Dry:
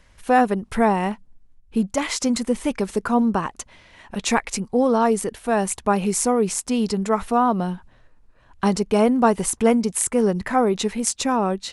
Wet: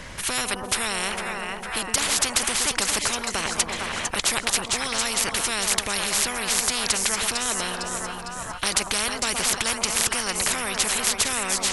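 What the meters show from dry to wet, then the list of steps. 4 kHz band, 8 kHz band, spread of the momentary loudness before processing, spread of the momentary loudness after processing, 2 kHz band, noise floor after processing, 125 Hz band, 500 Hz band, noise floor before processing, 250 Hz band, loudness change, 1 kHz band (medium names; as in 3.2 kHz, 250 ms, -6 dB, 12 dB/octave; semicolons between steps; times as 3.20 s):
+10.0 dB, +6.0 dB, 8 LU, 6 LU, +5.0 dB, -36 dBFS, -9.5 dB, -11.5 dB, -55 dBFS, -15.0 dB, -2.0 dB, -7.0 dB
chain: two-band feedback delay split 930 Hz, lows 116 ms, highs 454 ms, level -14.5 dB; spectrum-flattening compressor 10:1; trim +1.5 dB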